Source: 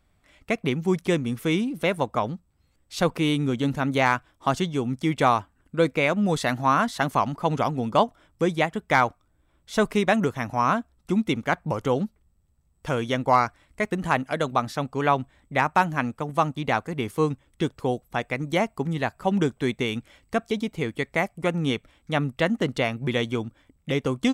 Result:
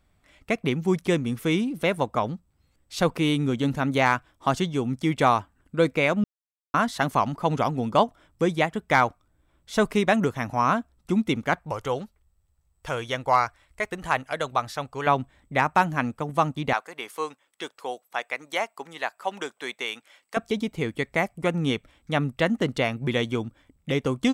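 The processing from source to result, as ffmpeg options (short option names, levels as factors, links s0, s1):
-filter_complex "[0:a]asettb=1/sr,asplit=3[s0][s1][s2];[s0]atrim=end=11.594[s3];[s1]atrim=start=11.59:end=15.07,asetpts=PTS-STARTPTS,afade=t=in:d=0.004:c=qsin,afade=t=out:st=3.476:d=0.004:c=qsin,equalizer=f=220:w=0.92:g=-12[s4];[s2]atrim=start=15.066[s5];[s3][s4]acrossfade=d=0.004:c1=hsin:c2=qsin[s6];[s6][s5]acrossfade=d=0.004:c1=qsin:c2=hsin,asettb=1/sr,asplit=3[s7][s8][s9];[s7]atrim=end=16.734[s10];[s8]atrim=start=16.73:end=20.37,asetpts=PTS-STARTPTS,afade=t=in:d=0.004:c=qsin,afade=t=out:st=3.636:d=0.004:c=qsin,highpass=700[s11];[s9]atrim=start=20.366[s12];[s10][s11]acrossfade=d=0.004:c1=hsin:c2=qsin[s13];[s13][s12]acrossfade=d=0.004:c1=qsin:c2=hsin,asplit=3[s14][s15][s16];[s14]atrim=end=6.24,asetpts=PTS-STARTPTS,afade=t=out:st=6.236:d=0.004:c=hsin[s17];[s15]atrim=start=6.24:end=6.74,asetpts=PTS-STARTPTS,volume=0[s18];[s16]atrim=start=6.74,asetpts=PTS-STARTPTS,afade=t=in:d=0.004:c=hsin[s19];[s17][s18][s19]concat=n=3:v=0:a=1"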